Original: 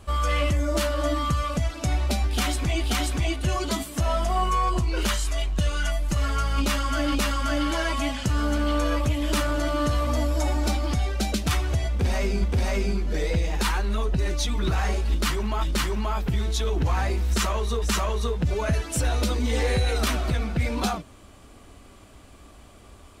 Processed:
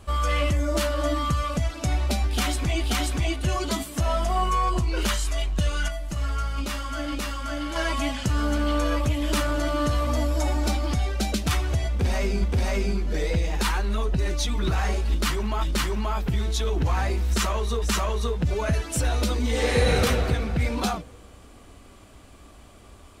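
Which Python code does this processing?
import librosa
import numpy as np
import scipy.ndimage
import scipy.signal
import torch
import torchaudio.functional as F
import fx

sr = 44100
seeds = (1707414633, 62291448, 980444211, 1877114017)

y = fx.comb_fb(x, sr, f0_hz=60.0, decay_s=0.55, harmonics='all', damping=0.0, mix_pct=60, at=(5.88, 7.76))
y = fx.reverb_throw(y, sr, start_s=19.52, length_s=0.43, rt60_s=2.2, drr_db=-4.0)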